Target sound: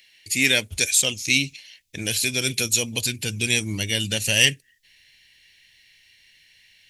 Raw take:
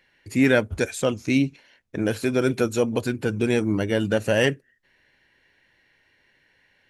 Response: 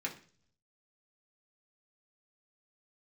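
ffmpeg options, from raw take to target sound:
-af "asubboost=boost=3.5:cutoff=180,aexciter=amount=10.9:drive=6.3:freq=2100,volume=-8.5dB"

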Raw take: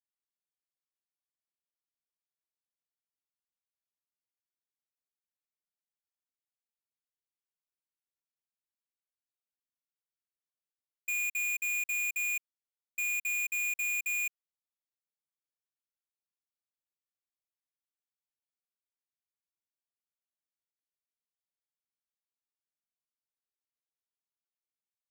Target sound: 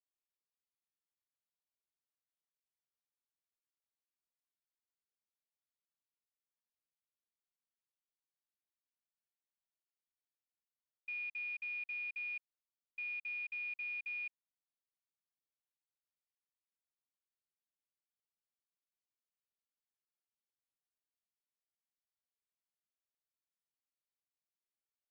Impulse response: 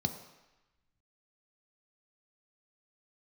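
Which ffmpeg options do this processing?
-af "aresample=11025,aresample=44100,volume=-8.5dB"

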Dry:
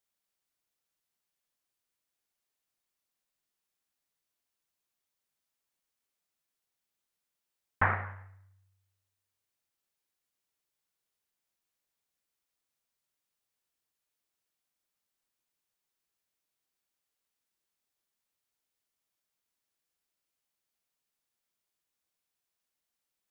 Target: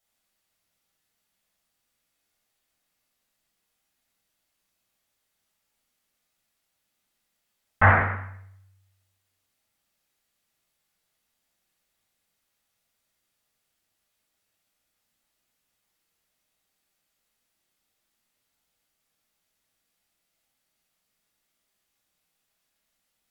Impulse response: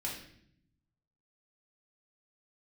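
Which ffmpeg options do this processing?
-filter_complex "[1:a]atrim=start_sample=2205,afade=type=out:start_time=0.24:duration=0.01,atrim=end_sample=11025,asetrate=37485,aresample=44100[link_01];[0:a][link_01]afir=irnorm=-1:irlink=0,volume=7.5dB"

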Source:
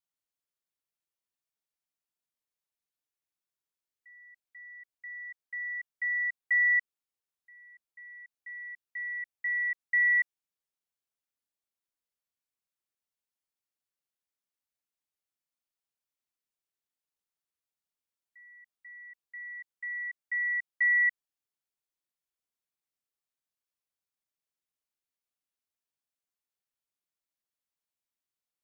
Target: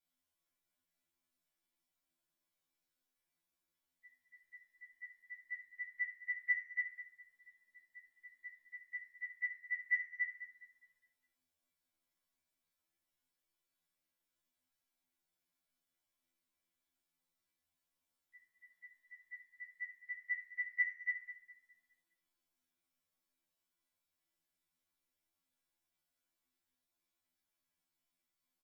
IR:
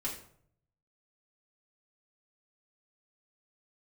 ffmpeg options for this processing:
-filter_complex "[0:a]asplit=2[link_01][link_02];[link_02]adelay=206,lowpass=frequency=1900:poles=1,volume=-14dB,asplit=2[link_03][link_04];[link_04]adelay=206,lowpass=frequency=1900:poles=1,volume=0.5,asplit=2[link_05][link_06];[link_06]adelay=206,lowpass=frequency=1900:poles=1,volume=0.5,asplit=2[link_07][link_08];[link_08]adelay=206,lowpass=frequency=1900:poles=1,volume=0.5,asplit=2[link_09][link_10];[link_10]adelay=206,lowpass=frequency=1900:poles=1,volume=0.5[link_11];[link_01][link_03][link_05][link_07][link_09][link_11]amix=inputs=6:normalize=0,acompressor=threshold=-27dB:ratio=6[link_12];[1:a]atrim=start_sample=2205,asetrate=48510,aresample=44100[link_13];[link_12][link_13]afir=irnorm=-1:irlink=0,afftfilt=real='re*2*eq(mod(b,4),0)':imag='im*2*eq(mod(b,4),0)':win_size=2048:overlap=0.75,volume=5dB"

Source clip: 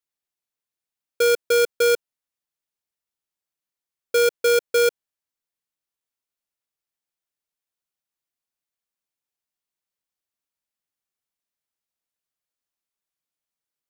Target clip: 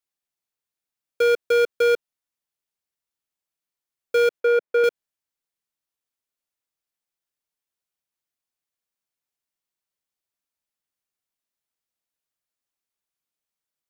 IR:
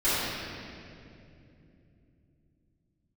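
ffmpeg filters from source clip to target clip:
-filter_complex "[0:a]acrossover=split=3500[link_01][link_02];[link_02]acompressor=threshold=-38dB:ratio=4:attack=1:release=60[link_03];[link_01][link_03]amix=inputs=2:normalize=0,asettb=1/sr,asplit=3[link_04][link_05][link_06];[link_04]atrim=end=4.404[link_07];[link_05]atrim=start=4.4:end=4.84,asetpts=PTS-STARTPTS,afade=type=in:duration=0.004:curve=qsin,afade=type=out:start_time=0.436:duration=0.004:curve=qsin,acrossover=split=180 2400:gain=0.158 1 0.2[link_08][link_09][link_10];[link_08][link_09][link_10]amix=inputs=3:normalize=0[link_11];[link_06]atrim=start=4.836[link_12];[link_07][link_11]acrossfade=duration=0.004:curve1=hsin:curve2=qsin[link_13];[link_13][link_12]acrossfade=duration=0.004:curve1=qsin:curve2=hsin"

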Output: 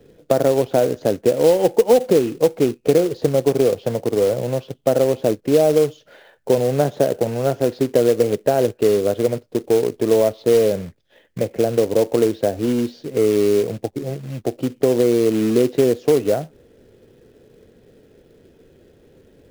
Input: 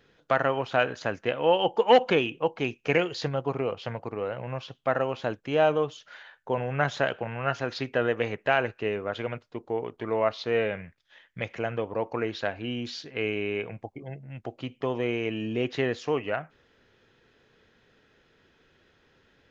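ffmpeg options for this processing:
ffmpeg -i in.wav -filter_complex "[0:a]lowshelf=frequency=750:width_type=q:width=1.5:gain=13.5,acrossover=split=180|1400[link_01][link_02][link_03];[link_01]acompressor=threshold=-32dB:ratio=4[link_04];[link_02]acompressor=threshold=-12dB:ratio=4[link_05];[link_03]acompressor=threshold=-46dB:ratio=4[link_06];[link_04][link_05][link_06]amix=inputs=3:normalize=0,acrusher=bits=4:mode=log:mix=0:aa=0.000001" out.wav

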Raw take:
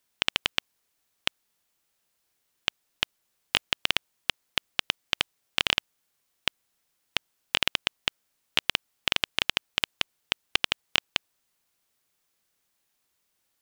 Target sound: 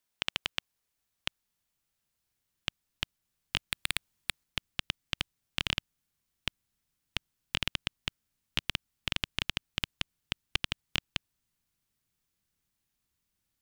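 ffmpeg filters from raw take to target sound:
ffmpeg -i in.wav -filter_complex "[0:a]asettb=1/sr,asplit=3[link_01][link_02][link_03];[link_01]atrim=end=3.714[link_04];[link_02]atrim=start=3.71:end=4.44,asetpts=PTS-STARTPTS,afade=type=in:duration=0.004:curve=qsin,afade=type=out:start_time=0.726:duration=0.004:curve=qsin,aeval=exprs='0.841*(cos(1*acos(clip(val(0)/0.841,-1,1)))-cos(1*PI/2))+0.299*(cos(7*acos(clip(val(0)/0.841,-1,1)))-cos(7*PI/2))':channel_layout=same[link_05];[link_03]atrim=start=4.436[link_06];[link_04][link_05]acrossfade=duration=0.004:curve1=hsin:curve2=qsin[link_07];[link_07][link_06]acrossfade=duration=0.004:curve1=qsin:curve2=hsin,asubboost=boost=5:cutoff=220,volume=-7dB" out.wav

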